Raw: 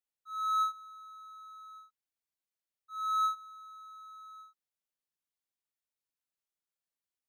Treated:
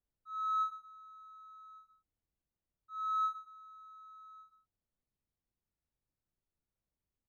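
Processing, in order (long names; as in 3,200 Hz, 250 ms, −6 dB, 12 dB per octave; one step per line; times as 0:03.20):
spectral tilt −5.5 dB per octave
single-tap delay 126 ms −12.5 dB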